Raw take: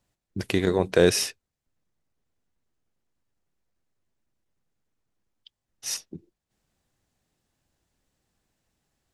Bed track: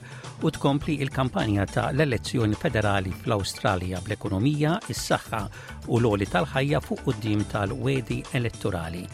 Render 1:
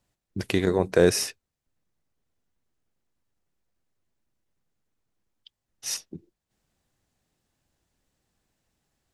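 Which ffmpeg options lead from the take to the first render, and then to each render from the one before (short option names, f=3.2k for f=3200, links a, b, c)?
-filter_complex "[0:a]asettb=1/sr,asplit=3[a][b][c];[a]atrim=end=0.644[d];[b]atrim=start=0.64:end=1.28,asetpts=PTS-STARTPTS,afade=t=in:d=0.004:c=qsin,afade=t=out:st=0.636:d=0.004:c=qsin,equalizer=f=3.2k:t=o:w=0.79:g=-7.5[e];[c]atrim=start=1.276[f];[d][e]acrossfade=d=0.004:c1=hsin:c2=qsin[g];[g][f]acrossfade=d=0.004:c1=qsin:c2=hsin"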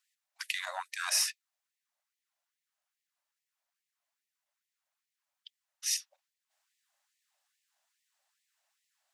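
-af "asoftclip=type=tanh:threshold=-13.5dB,afftfilt=real='re*gte(b*sr/1024,520*pow(1800/520,0.5+0.5*sin(2*PI*2.4*pts/sr)))':imag='im*gte(b*sr/1024,520*pow(1800/520,0.5+0.5*sin(2*PI*2.4*pts/sr)))':win_size=1024:overlap=0.75"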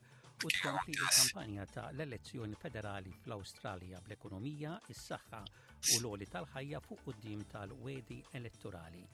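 -filter_complex "[1:a]volume=-21dB[a];[0:a][a]amix=inputs=2:normalize=0"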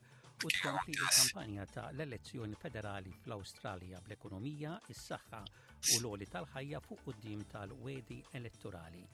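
-af anull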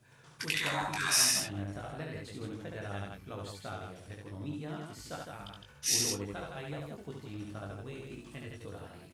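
-filter_complex "[0:a]asplit=2[a][b];[b]adelay=20,volume=-4dB[c];[a][c]amix=inputs=2:normalize=0,aecho=1:1:70|160:0.708|0.562"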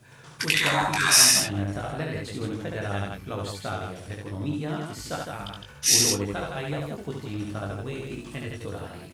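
-af "volume=10dB"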